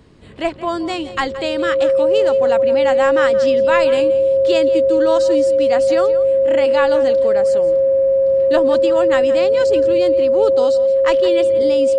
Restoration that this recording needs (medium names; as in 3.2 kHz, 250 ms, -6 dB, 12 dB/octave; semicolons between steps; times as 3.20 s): band-stop 540 Hz, Q 30; inverse comb 172 ms -15.5 dB